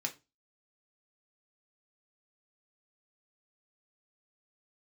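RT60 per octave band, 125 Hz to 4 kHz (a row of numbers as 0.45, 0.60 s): 0.35, 0.30, 0.25, 0.25, 0.20, 0.25 s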